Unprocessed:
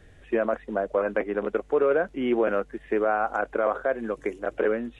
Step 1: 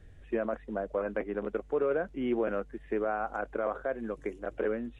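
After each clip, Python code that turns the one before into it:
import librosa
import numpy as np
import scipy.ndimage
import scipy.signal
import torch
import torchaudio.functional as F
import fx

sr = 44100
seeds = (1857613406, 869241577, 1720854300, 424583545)

y = fx.low_shelf(x, sr, hz=200.0, db=10.0)
y = F.gain(torch.from_numpy(y), -8.5).numpy()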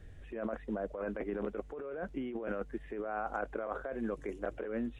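y = fx.over_compress(x, sr, threshold_db=-35.0, ratio=-1.0)
y = F.gain(torch.from_numpy(y), -2.0).numpy()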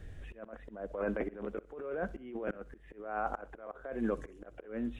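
y = fx.auto_swell(x, sr, attack_ms=351.0)
y = fx.echo_feedback(y, sr, ms=63, feedback_pct=42, wet_db=-20.5)
y = F.gain(torch.from_numpy(y), 4.0).numpy()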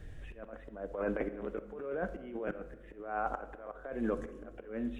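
y = fx.room_shoebox(x, sr, seeds[0], volume_m3=740.0, walls='mixed', distance_m=0.42)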